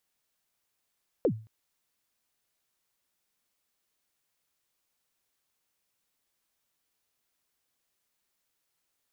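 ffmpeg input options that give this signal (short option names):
-f lavfi -i "aevalsrc='0.126*pow(10,-3*t/0.37)*sin(2*PI*(570*0.077/log(110/570)*(exp(log(110/570)*min(t,0.077)/0.077)-1)+110*max(t-0.077,0)))':d=0.22:s=44100"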